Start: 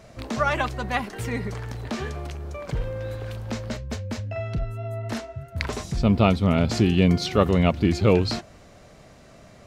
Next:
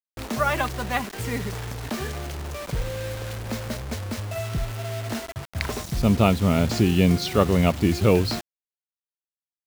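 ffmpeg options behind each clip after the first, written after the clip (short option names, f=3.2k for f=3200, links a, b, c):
-af "acrusher=bits=5:mix=0:aa=0.000001"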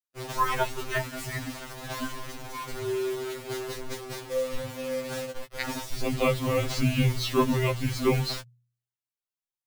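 -af "afreqshift=-140,bandreject=f=60.41:t=h:w=4,bandreject=f=120.82:t=h:w=4,afftfilt=real='re*2.45*eq(mod(b,6),0)':imag='im*2.45*eq(mod(b,6),0)':win_size=2048:overlap=0.75"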